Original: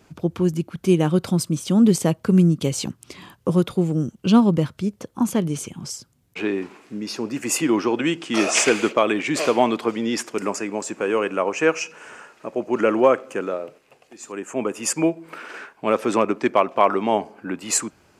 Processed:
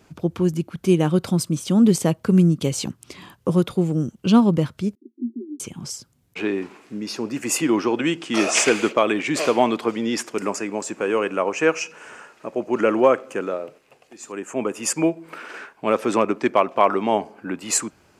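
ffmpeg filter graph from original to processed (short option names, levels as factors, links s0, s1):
-filter_complex "[0:a]asettb=1/sr,asplit=3[s0][s1][s2];[s0]atrim=end=4.954[s3];[s1]atrim=start=4.95:end=5.6,asetpts=PTS-STARTPTS,afade=t=in:d=0.004:c=qsin,afade=t=out:st=0.646:d=0.004:c=qsin,asuperpass=centerf=300:order=20:qfactor=1.8,lowshelf=f=310:g=-9[s4];[s2]atrim=start=5.596[s5];[s3][s4]acrossfade=d=0.004:c1=hsin:c2=qsin[s6];[s6][s5]acrossfade=d=0.004:c1=qsin:c2=hsin"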